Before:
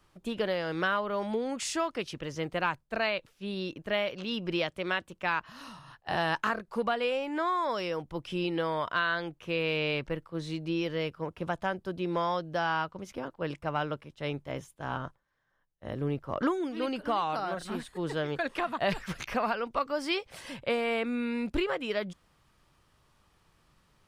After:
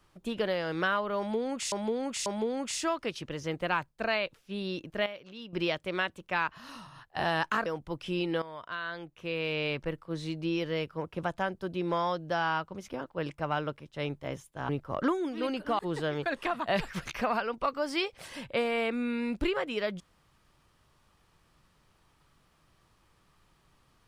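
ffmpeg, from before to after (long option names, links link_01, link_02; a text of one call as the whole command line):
ffmpeg -i in.wav -filter_complex "[0:a]asplit=9[link_01][link_02][link_03][link_04][link_05][link_06][link_07][link_08][link_09];[link_01]atrim=end=1.722[link_10];[link_02]atrim=start=1.178:end=1.722[link_11];[link_03]atrim=start=1.178:end=3.982[link_12];[link_04]atrim=start=3.978:end=4.452,asetpts=PTS-STARTPTS,volume=-11dB[link_13];[link_05]atrim=start=4.448:end=6.582[link_14];[link_06]atrim=start=7.898:end=8.66,asetpts=PTS-STARTPTS,afade=type=out:start_time=0.758:duration=0.004:curve=hsin:silence=0.188365[link_15];[link_07]atrim=start=8.66:end=14.932,asetpts=PTS-STARTPTS,afade=type=in:duration=1.51:silence=0.188365[link_16];[link_08]atrim=start=16.078:end=17.182[link_17];[link_09]atrim=start=17.918[link_18];[link_10][link_11]acrossfade=duration=0.004:curve1=hsin:curve2=hsin[link_19];[link_19][link_12]acrossfade=duration=0.004:curve1=hsin:curve2=hsin[link_20];[link_20][link_13]acrossfade=duration=0.004:curve1=hsin:curve2=hsin[link_21];[link_21][link_14]acrossfade=duration=0.004:curve1=hsin:curve2=hsin[link_22];[link_15][link_16]concat=n=2:v=0:a=1[link_23];[link_22][link_23]acrossfade=duration=0.004:curve1=hsin:curve2=hsin[link_24];[link_24][link_17]acrossfade=duration=0.004:curve1=hsin:curve2=hsin[link_25];[link_25][link_18]acrossfade=duration=0.004:curve1=hsin:curve2=hsin" out.wav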